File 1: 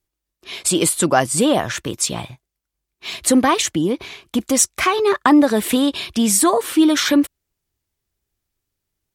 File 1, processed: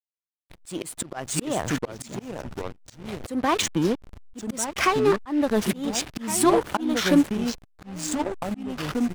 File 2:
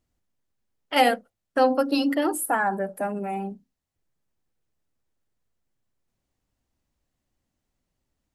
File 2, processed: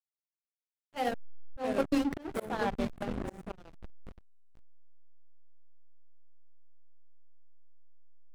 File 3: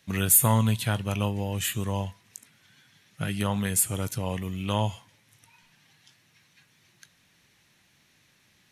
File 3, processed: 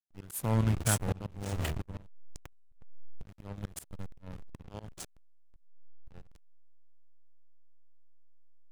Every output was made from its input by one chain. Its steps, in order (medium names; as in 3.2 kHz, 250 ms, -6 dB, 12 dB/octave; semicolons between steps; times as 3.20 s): ever faster or slower copies 493 ms, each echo -3 st, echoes 2, each echo -6 dB; hysteresis with a dead band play -17 dBFS; slow attack 322 ms; trim -2.5 dB